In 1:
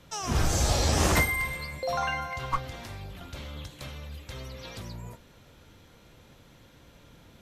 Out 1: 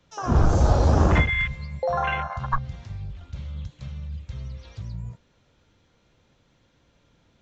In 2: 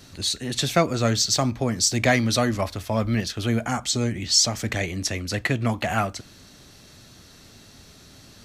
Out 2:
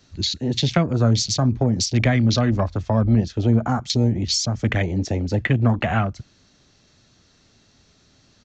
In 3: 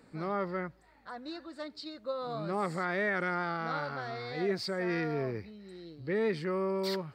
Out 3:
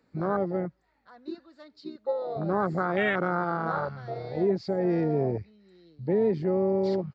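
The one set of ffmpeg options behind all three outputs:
-filter_complex "[0:a]afwtdn=0.0355,acrossover=split=210[s0][s1];[s1]acompressor=threshold=0.0355:ratio=6[s2];[s0][s2]amix=inputs=2:normalize=0,aresample=16000,aresample=44100,volume=2.51"

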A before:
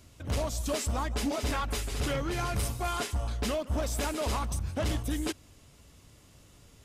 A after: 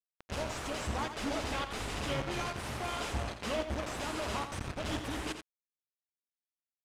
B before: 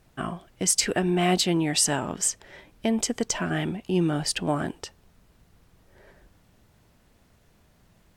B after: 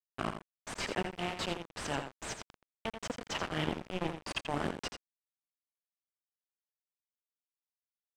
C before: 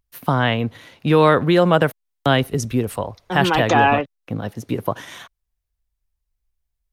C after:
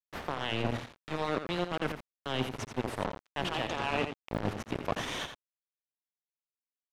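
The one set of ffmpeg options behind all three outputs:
-filter_complex "[0:a]highpass=60,aemphasis=mode=production:type=75fm,bandreject=f=60:t=h:w=6,bandreject=f=120:t=h:w=6,bandreject=f=180:t=h:w=6,bandreject=f=240:t=h:w=6,bandreject=f=300:t=h:w=6,bandreject=f=360:t=h:w=6,bandreject=f=420:t=h:w=6,bandreject=f=480:t=h:w=6,adynamicequalizer=threshold=0.0158:dfrequency=570:dqfactor=3.4:tfrequency=570:tqfactor=3.4:attack=5:release=100:ratio=0.375:range=4:mode=cutabove:tftype=bell,areverse,acompressor=threshold=0.0251:ratio=10,areverse,aeval=exprs='sgn(val(0))*max(abs(val(0))-0.00398,0)':c=same,aexciter=amount=3.7:drive=3:freq=2400,acrusher=bits=4:mix=0:aa=0.000001,asoftclip=type=hard:threshold=0.0708,adynamicsmooth=sensitivity=0.5:basefreq=1700,asplit=2[s0][s1];[s1]aecho=0:1:85:0.376[s2];[s0][s2]amix=inputs=2:normalize=0,volume=1.78"

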